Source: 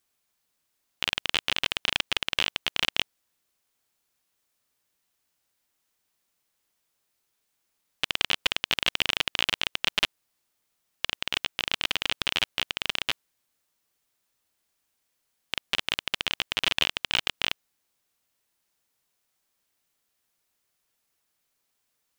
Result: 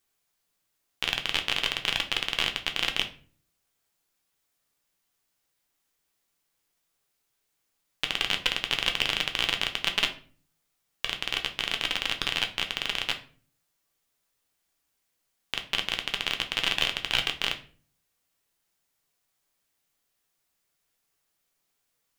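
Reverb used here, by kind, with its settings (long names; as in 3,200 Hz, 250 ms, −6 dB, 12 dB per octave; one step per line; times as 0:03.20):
rectangular room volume 33 cubic metres, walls mixed, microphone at 0.33 metres
level −1.5 dB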